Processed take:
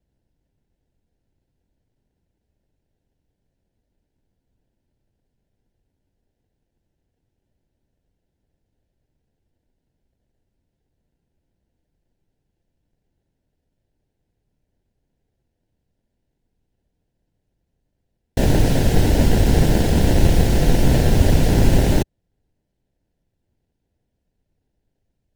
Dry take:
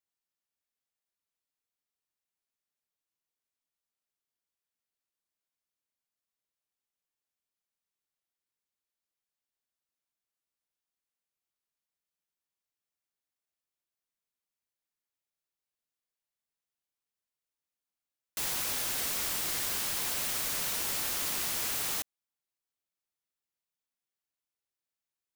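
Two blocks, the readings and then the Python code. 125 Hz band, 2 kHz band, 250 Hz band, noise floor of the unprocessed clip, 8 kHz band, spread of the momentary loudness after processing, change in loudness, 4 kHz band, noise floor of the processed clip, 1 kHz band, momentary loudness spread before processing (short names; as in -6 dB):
+36.0 dB, +8.5 dB, +30.0 dB, under -85 dBFS, +0.5 dB, 4 LU, +12.0 dB, +5.0 dB, -76 dBFS, +13.5 dB, 3 LU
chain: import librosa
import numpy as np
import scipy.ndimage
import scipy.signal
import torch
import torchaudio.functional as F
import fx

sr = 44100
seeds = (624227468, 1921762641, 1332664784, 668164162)

p1 = fx.tilt_shelf(x, sr, db=-7.5, hz=650.0)
p2 = fx.fixed_phaser(p1, sr, hz=400.0, stages=4)
p3 = p2 + 0.84 * np.pad(p2, (int(5.1 * sr / 1000.0), 0))[:len(p2)]
p4 = fx.sample_hold(p3, sr, seeds[0], rate_hz=1200.0, jitter_pct=0)
p5 = p3 + (p4 * 10.0 ** (-3.0 / 20.0))
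p6 = fx.riaa(p5, sr, side='playback')
y = p6 * 10.0 ** (2.5 / 20.0)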